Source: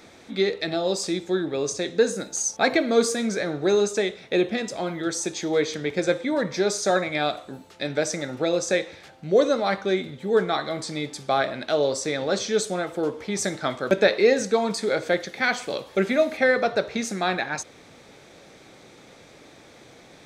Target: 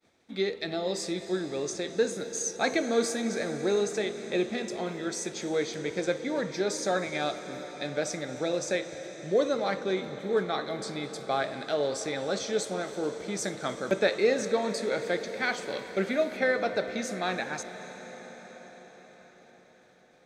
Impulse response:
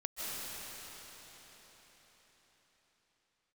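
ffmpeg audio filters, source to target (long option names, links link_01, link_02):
-filter_complex "[0:a]agate=range=-33dB:threshold=-40dB:ratio=3:detection=peak,asplit=2[link_01][link_02];[1:a]atrim=start_sample=2205,asetrate=33075,aresample=44100[link_03];[link_02][link_03]afir=irnorm=-1:irlink=0,volume=-14dB[link_04];[link_01][link_04]amix=inputs=2:normalize=0,volume=-7.5dB"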